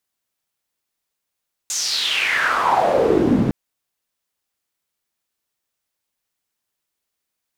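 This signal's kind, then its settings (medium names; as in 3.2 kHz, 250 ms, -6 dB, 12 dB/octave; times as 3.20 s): swept filtered noise pink, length 1.81 s bandpass, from 7.1 kHz, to 180 Hz, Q 5.2, exponential, gain ramp +9 dB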